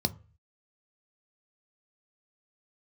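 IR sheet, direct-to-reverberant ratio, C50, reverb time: 10.0 dB, 21.0 dB, 0.35 s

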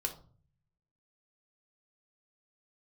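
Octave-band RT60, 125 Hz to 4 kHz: 1.0 s, 0.80 s, 0.45 s, 0.40 s, 0.30 s, 0.30 s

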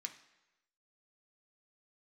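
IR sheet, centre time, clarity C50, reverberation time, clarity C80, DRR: 11 ms, 11.5 dB, 1.0 s, 14.0 dB, 4.0 dB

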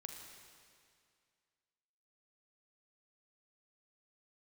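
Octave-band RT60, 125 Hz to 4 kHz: 2.2 s, 2.2 s, 2.2 s, 2.2 s, 2.2 s, 2.1 s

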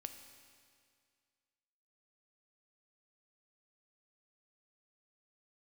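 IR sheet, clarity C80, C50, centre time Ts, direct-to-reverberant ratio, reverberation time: 9.0 dB, 8.0 dB, 29 ms, 6.5 dB, 2.1 s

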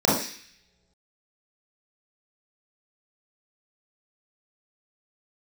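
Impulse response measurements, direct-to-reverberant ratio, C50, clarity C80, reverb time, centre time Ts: -7.0 dB, 2.0 dB, 7.5 dB, no single decay rate, 52 ms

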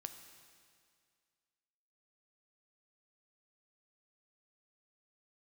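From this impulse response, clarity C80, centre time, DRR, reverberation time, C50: 9.5 dB, 27 ms, 7.0 dB, 2.1 s, 8.5 dB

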